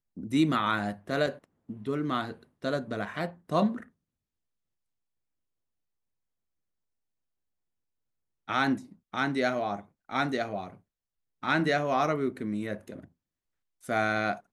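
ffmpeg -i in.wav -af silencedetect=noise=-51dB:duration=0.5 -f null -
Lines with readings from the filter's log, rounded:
silence_start: 3.88
silence_end: 8.48 | silence_duration: 4.59
silence_start: 10.77
silence_end: 11.43 | silence_duration: 0.66
silence_start: 13.06
silence_end: 13.83 | silence_duration: 0.77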